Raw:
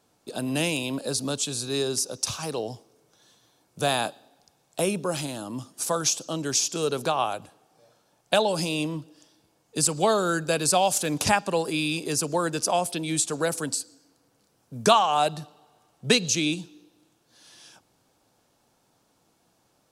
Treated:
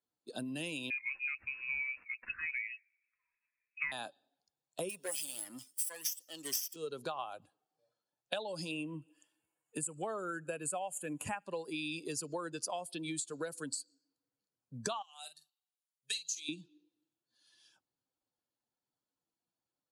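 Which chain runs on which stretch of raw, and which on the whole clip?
0.90–3.92 s: dead-time distortion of 0.055 ms + frequency inversion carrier 2.7 kHz
4.89–6.76 s: comb filter that takes the minimum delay 0.36 ms + RIAA curve recording
8.71–11.46 s: high-order bell 4.6 kHz -13 dB 1 oct + feedback echo behind a high-pass 75 ms, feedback 60%, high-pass 1.7 kHz, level -24 dB + tape noise reduction on one side only encoder only
15.02–16.49 s: pre-emphasis filter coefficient 0.97 + doubling 46 ms -8 dB
whole clip: expander on every frequency bin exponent 1.5; compression 12:1, threshold -36 dBFS; bass shelf 170 Hz -10 dB; trim +1.5 dB

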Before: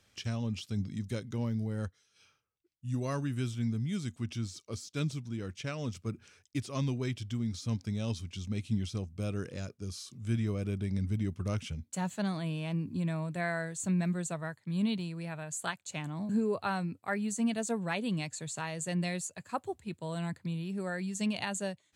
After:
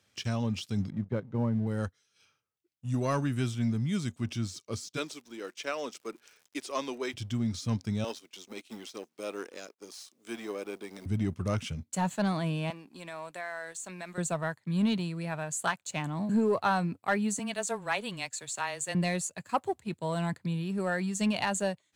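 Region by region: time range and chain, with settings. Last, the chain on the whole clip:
0.90–1.67 s: low-pass 1.4 kHz + gate -38 dBFS, range -7 dB + peaking EQ 160 Hz +8 dB 0.32 oct
4.96–7.13 s: high-pass 330 Hz 24 dB/octave + crackle 160 per s -51 dBFS
8.04–11.06 s: companding laws mixed up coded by A + high-pass 320 Hz 24 dB/octave
12.70–14.18 s: high-pass 580 Hz + compression 5:1, threshold -40 dBFS
17.39–18.95 s: high-pass 820 Hz 6 dB/octave + frequency shift -13 Hz
whole clip: high-pass 90 Hz 12 dB/octave; dynamic bell 940 Hz, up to +5 dB, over -46 dBFS, Q 0.78; waveshaping leveller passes 1

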